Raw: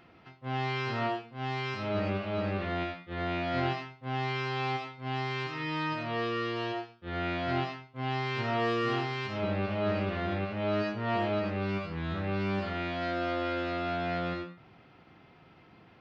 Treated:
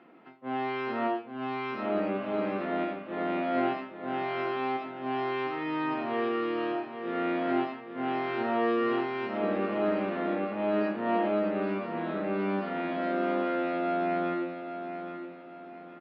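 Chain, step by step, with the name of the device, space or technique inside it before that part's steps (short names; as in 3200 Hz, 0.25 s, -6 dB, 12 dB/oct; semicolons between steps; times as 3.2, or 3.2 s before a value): HPF 220 Hz 24 dB/oct; phone in a pocket (LPF 3100 Hz 12 dB/oct; bell 270 Hz +3.5 dB 0.77 oct; high shelf 2100 Hz -9 dB); feedback echo 0.823 s, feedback 38%, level -9 dB; gain +3 dB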